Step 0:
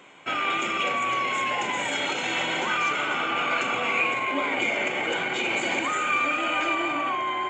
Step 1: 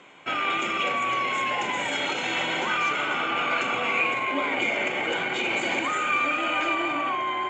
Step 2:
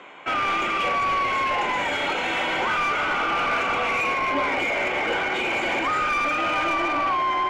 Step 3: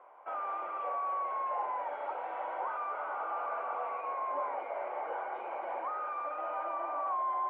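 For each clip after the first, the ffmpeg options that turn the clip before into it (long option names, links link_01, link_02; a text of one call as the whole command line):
ffmpeg -i in.wav -af "lowpass=7100" out.wav
ffmpeg -i in.wav -filter_complex "[0:a]asplit=2[link_01][link_02];[link_02]highpass=frequency=720:poles=1,volume=17dB,asoftclip=type=tanh:threshold=-12.5dB[link_03];[link_01][link_03]amix=inputs=2:normalize=0,lowpass=frequency=1300:poles=1,volume=-6dB" out.wav
ffmpeg -i in.wav -af "asuperpass=centerf=780:order=4:qfactor=1.3,volume=-8dB" out.wav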